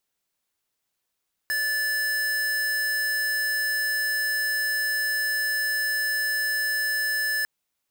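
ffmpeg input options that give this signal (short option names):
-f lavfi -i "aevalsrc='0.0531*(2*lt(mod(1740*t,1),0.5)-1)':d=5.95:s=44100"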